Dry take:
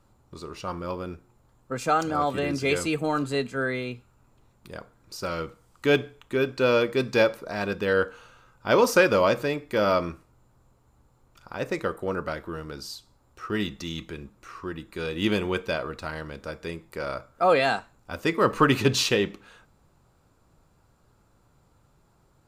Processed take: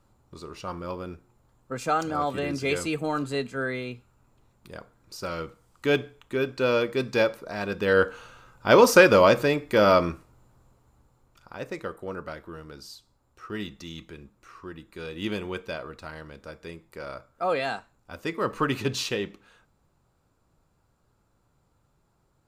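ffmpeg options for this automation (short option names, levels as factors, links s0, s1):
-af "volume=1.58,afade=t=in:st=7.68:d=0.41:silence=0.501187,afade=t=out:st=10.05:d=1.63:silence=0.316228"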